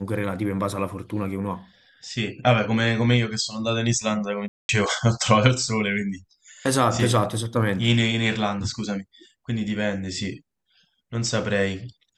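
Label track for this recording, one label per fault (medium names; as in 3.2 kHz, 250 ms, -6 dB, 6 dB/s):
4.480000	4.690000	dropout 211 ms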